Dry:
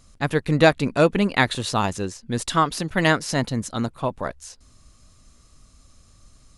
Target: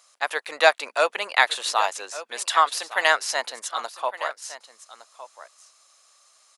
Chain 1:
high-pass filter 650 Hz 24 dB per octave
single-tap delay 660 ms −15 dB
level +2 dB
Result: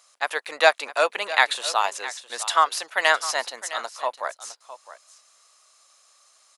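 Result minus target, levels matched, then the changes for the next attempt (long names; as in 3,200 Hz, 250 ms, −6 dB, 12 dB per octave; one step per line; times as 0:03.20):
echo 502 ms early
change: single-tap delay 1,162 ms −15 dB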